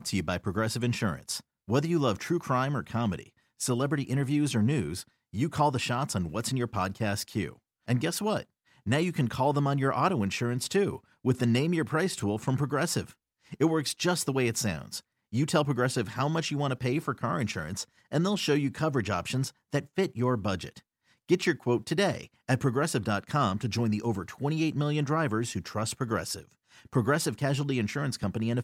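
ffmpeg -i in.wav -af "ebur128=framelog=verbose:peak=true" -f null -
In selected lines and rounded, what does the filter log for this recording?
Integrated loudness:
  I:         -29.3 LUFS
  Threshold: -39.6 LUFS
Loudness range:
  LRA:         2.1 LU
  Threshold: -49.5 LUFS
  LRA low:   -30.4 LUFS
  LRA high:  -28.4 LUFS
True peak:
  Peak:      -11.0 dBFS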